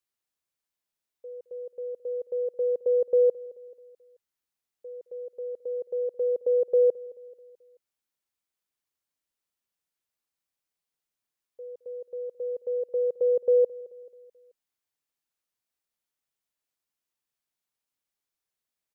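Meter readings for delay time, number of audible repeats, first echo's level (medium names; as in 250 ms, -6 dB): 217 ms, 3, -21.0 dB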